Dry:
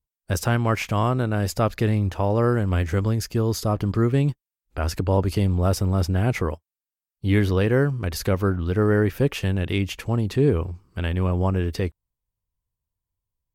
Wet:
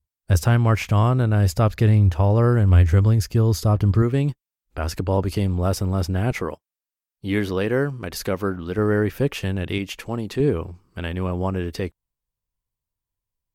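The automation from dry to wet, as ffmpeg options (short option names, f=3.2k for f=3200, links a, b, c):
-af "asetnsamples=n=441:p=0,asendcmd='4.02 equalizer g -1.5;6.31 equalizer g -11.5;8.78 equalizer g -3;9.78 equalizer g -14;10.4 equalizer g -5.5',equalizer=f=76:t=o:w=1.4:g=10.5"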